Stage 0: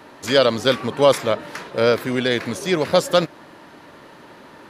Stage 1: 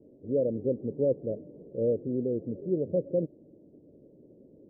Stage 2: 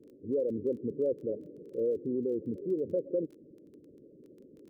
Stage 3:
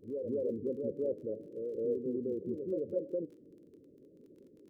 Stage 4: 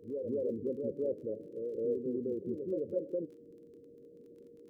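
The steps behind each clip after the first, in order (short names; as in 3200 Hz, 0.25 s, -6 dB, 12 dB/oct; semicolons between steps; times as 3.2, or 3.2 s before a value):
steep low-pass 530 Hz 48 dB/oct; gain -7.5 dB
formant sharpening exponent 2; compressor 2:1, threshold -29 dBFS, peak gain reduction 5 dB; crackle 16/s -49 dBFS
reverse echo 0.212 s -4.5 dB; flange 0.69 Hz, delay 8.8 ms, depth 2.6 ms, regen +88%; vibrato 0.45 Hz 8.8 cents
whine 470 Hz -55 dBFS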